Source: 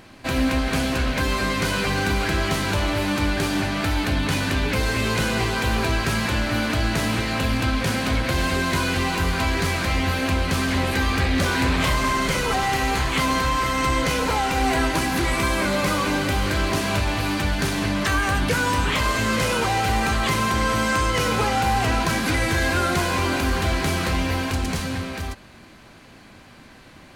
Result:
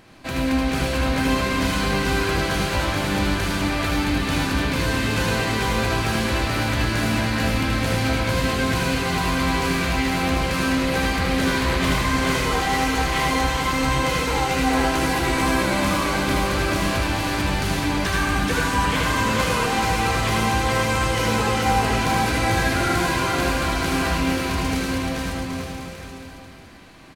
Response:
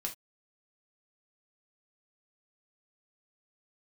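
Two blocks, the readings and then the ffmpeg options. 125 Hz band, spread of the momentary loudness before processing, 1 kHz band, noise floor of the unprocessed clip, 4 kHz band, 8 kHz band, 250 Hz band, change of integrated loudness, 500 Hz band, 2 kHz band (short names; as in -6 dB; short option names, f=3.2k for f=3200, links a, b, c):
0.0 dB, 2 LU, +1.0 dB, -47 dBFS, +0.5 dB, +0.5 dB, +1.5 dB, +0.5 dB, +1.0 dB, +0.5 dB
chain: -filter_complex "[0:a]aecho=1:1:430|774|1049|1269|1445:0.631|0.398|0.251|0.158|0.1,asplit=2[a][b];[1:a]atrim=start_sample=2205,adelay=76[c];[b][c]afir=irnorm=-1:irlink=0,volume=-1.5dB[d];[a][d]amix=inputs=2:normalize=0,volume=-4dB"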